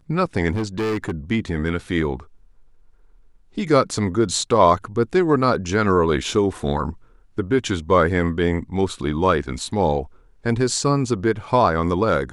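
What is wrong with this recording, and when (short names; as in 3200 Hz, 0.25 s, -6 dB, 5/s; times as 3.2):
0.54–1.12 clipped -20 dBFS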